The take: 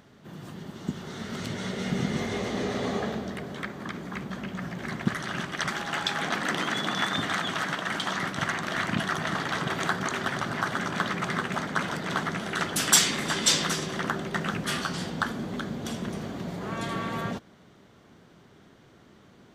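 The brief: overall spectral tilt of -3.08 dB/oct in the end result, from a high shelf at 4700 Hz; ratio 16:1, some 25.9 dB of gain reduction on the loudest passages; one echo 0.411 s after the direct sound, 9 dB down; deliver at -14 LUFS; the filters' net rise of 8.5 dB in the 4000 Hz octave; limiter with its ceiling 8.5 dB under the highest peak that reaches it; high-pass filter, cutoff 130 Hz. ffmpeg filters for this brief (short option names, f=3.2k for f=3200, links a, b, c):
-af "highpass=130,equalizer=f=4k:t=o:g=8,highshelf=f=4.7k:g=5.5,acompressor=threshold=-35dB:ratio=16,alimiter=level_in=3dB:limit=-24dB:level=0:latency=1,volume=-3dB,aecho=1:1:411:0.355,volume=24.5dB"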